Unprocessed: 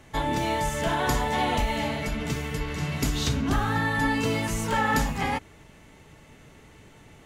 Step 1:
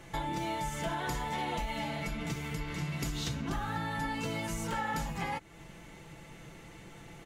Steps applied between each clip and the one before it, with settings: comb 5.9 ms, depth 55%; compressor 2.5:1, threshold -37 dBFS, peak gain reduction 12 dB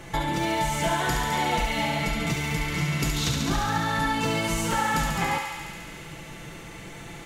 thinning echo 70 ms, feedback 84%, high-pass 660 Hz, level -5 dB; gain +8.5 dB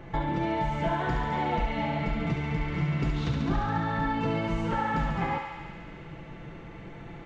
tape spacing loss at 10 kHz 37 dB

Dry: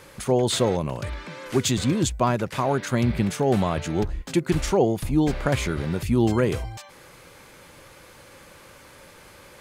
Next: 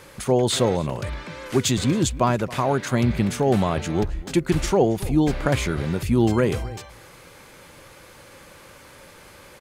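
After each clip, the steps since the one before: outdoor echo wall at 47 m, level -19 dB; gain +1.5 dB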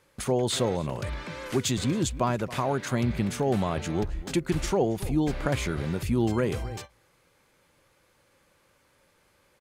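gate -38 dBFS, range -17 dB; in parallel at +2 dB: compressor, threshold -28 dBFS, peak gain reduction 13.5 dB; on the sum: gain -8.5 dB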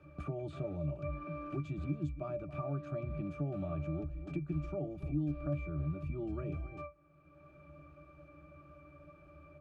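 octave resonator D, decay 0.17 s; three-band squash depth 70%

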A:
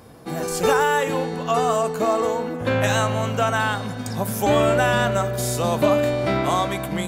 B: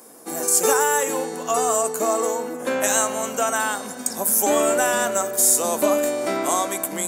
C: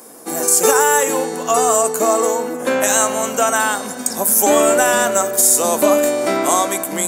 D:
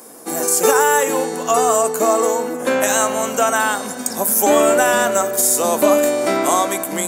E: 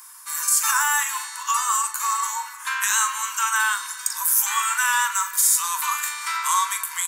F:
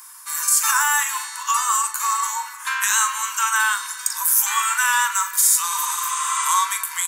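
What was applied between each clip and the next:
HPF 240 Hz 24 dB/oct; resonant high shelf 5400 Hz +12.5 dB, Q 1.5; gain -1 dB
maximiser +7 dB; gain -1 dB
dynamic EQ 8200 Hz, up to -4 dB, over -24 dBFS, Q 0.74
Chebyshev high-pass 920 Hz, order 8; doubler 40 ms -11 dB; gain -1.5 dB
spectral repair 5.73–6.43, 1000–10000 Hz both; gain +2 dB

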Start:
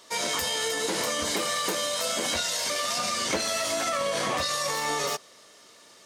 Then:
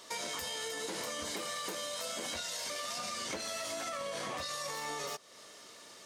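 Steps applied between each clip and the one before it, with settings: compressor 3:1, threshold -40 dBFS, peak gain reduction 13 dB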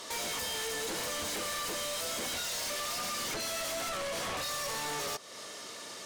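sine folder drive 12 dB, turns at -25.5 dBFS; gain -7 dB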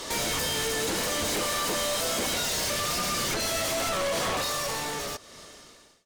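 ending faded out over 1.79 s; in parallel at -9 dB: decimation with a swept rate 29×, swing 100% 0.41 Hz; on the sum: gain +6.5 dB

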